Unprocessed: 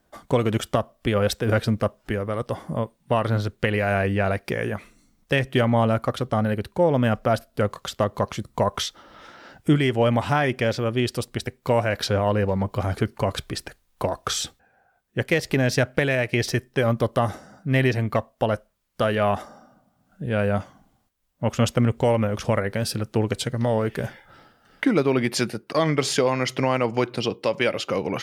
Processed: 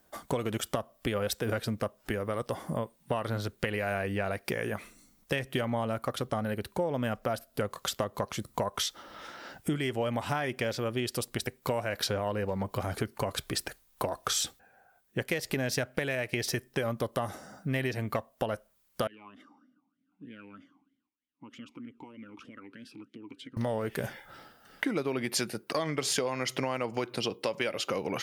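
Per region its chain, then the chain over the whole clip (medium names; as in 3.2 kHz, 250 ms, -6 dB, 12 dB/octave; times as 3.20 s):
19.07–23.57 s: compression, threshold -27 dBFS + talking filter i-u 3.2 Hz
whole clip: bass shelf 170 Hz -6 dB; compression 4:1, threshold -29 dBFS; treble shelf 8.9 kHz +10.5 dB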